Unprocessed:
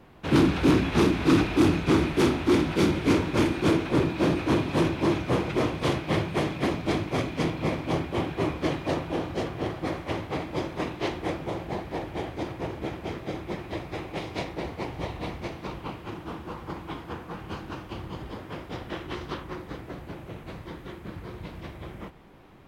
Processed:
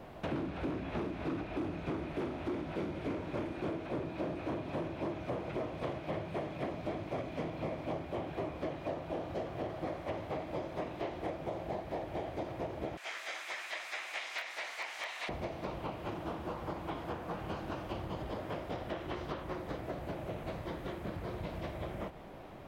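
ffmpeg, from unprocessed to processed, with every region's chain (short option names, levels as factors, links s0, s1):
-filter_complex "[0:a]asettb=1/sr,asplit=3[s0][s1][s2];[s0]atrim=end=12.974[s3];[s1]atrim=start=12.97:end=15.29,asetpts=PTS-STARTPTS,afade=t=in:d=0.004:c=qsin,afade=t=out:st=2.316:d=0.004:c=qsin,equalizer=f=7200:t=o:w=1.4:g=14.5,aeval=exprs='(mod(9.44*val(0)+1,2)-1)/9.44':c=same,highpass=f=1700:t=q:w=1.5[s4];[s2]atrim=start=15.286[s5];[s3][s4]acrossfade=d=0.004:c1=hsin:c2=qsin[s6];[s6][s5]acrossfade=d=0.004:c1=qsin:c2=hsin,acrossover=split=2900[s7][s8];[s8]acompressor=threshold=0.00355:ratio=4:attack=1:release=60[s9];[s7][s9]amix=inputs=2:normalize=0,equalizer=f=630:t=o:w=0.58:g=9.5,acompressor=threshold=0.0141:ratio=6,volume=1.12"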